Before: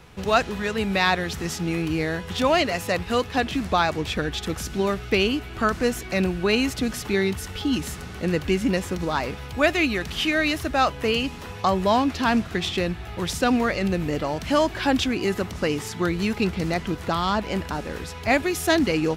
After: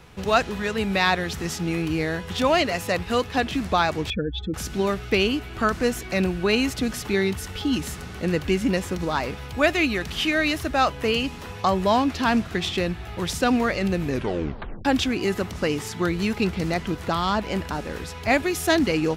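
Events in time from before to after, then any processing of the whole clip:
0:04.10–0:04.54: expanding power law on the bin magnitudes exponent 2.5
0:14.05: tape stop 0.80 s

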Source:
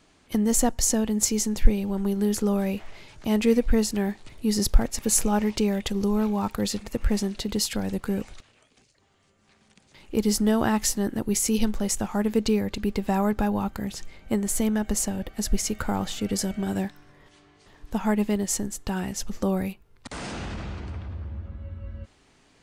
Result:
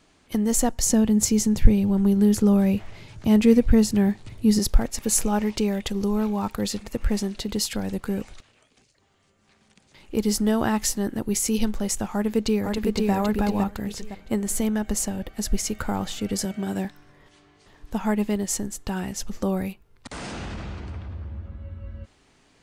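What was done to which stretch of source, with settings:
0:00.86–0:04.59: parametric band 110 Hz +12 dB 2 octaves
0:12.12–0:13.12: delay throw 510 ms, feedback 30%, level −2.5 dB
0:16.45–0:16.85: high-pass filter 110 Hz

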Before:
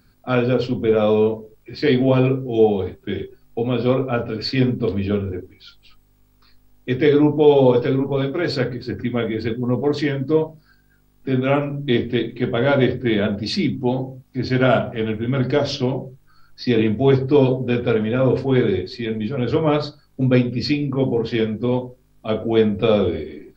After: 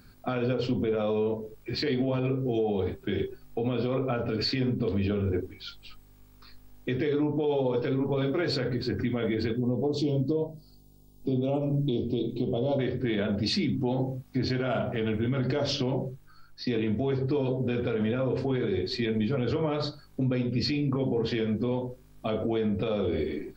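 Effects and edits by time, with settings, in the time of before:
0:09.58–0:12.79: Butterworth band-reject 1,700 Hz, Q 0.59
0:15.97–0:16.67: fade out, to −9.5 dB
whole clip: downward compressor 4 to 1, threshold −24 dBFS; brickwall limiter −22 dBFS; level +2.5 dB

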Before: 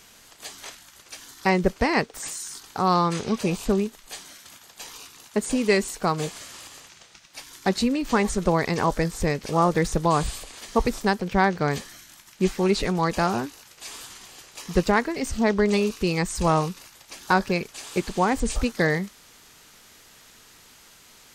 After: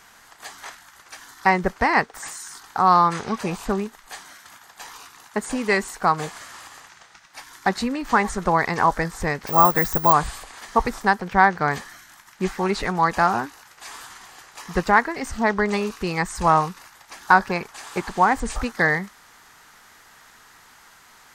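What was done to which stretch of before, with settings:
0:09.47–0:10.13: bad sample-rate conversion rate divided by 2×, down none, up zero stuff
0:17.48–0:18.10: dynamic equaliser 910 Hz, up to +6 dB, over −45 dBFS, Q 1.7
whole clip: flat-topped bell 1,200 Hz +9.5 dB; level −2.5 dB

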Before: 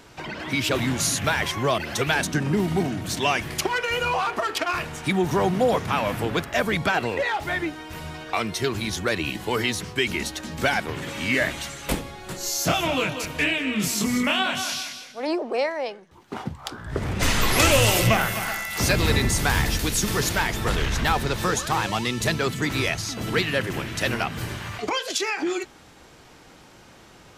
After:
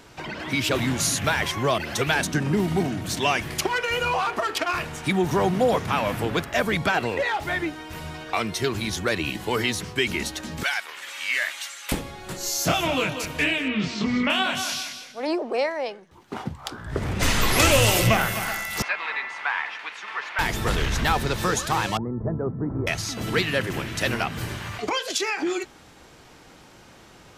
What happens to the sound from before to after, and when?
0:10.63–0:11.92: high-pass filter 1,300 Hz
0:13.68–0:14.30: low-pass filter 4,400 Hz 24 dB per octave
0:18.82–0:20.39: Chebyshev band-pass filter 930–2,400 Hz
0:21.97–0:22.87: Gaussian smoothing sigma 9.6 samples

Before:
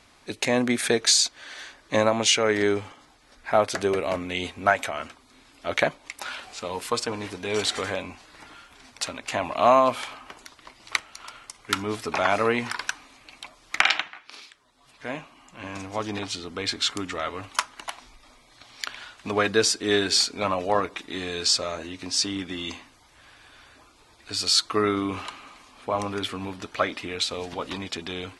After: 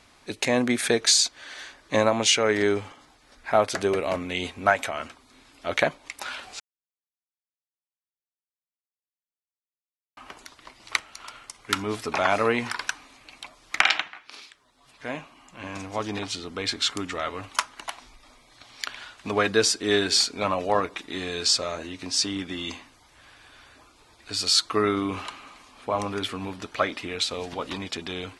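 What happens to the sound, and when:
0:06.60–0:10.17: silence

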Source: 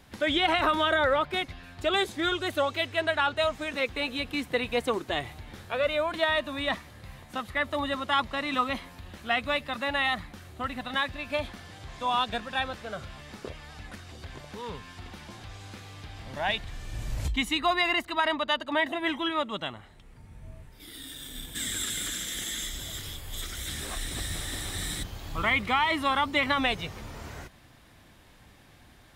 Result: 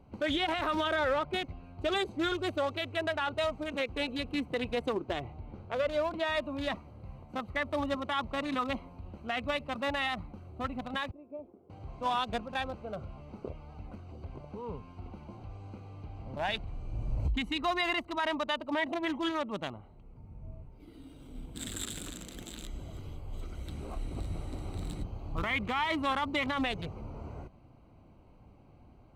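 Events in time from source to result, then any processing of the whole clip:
0:04.93–0:06.27: high-frequency loss of the air 82 metres
0:11.11–0:11.70: resonant band-pass 390 Hz, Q 3.6
whole clip: adaptive Wiener filter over 25 samples; brickwall limiter −21.5 dBFS

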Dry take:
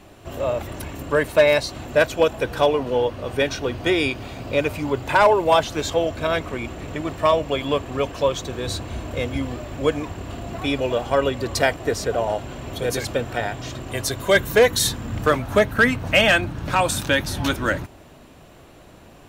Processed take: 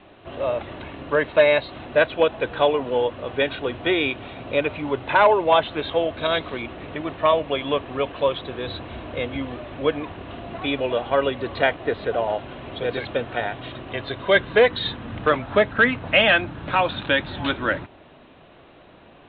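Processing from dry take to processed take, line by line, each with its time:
0:06.18–0:06.62: flat-topped bell 5,000 Hz +8.5 dB 1.3 octaves
whole clip: Butterworth low-pass 3,900 Hz 96 dB per octave; low-shelf EQ 150 Hz −10 dB

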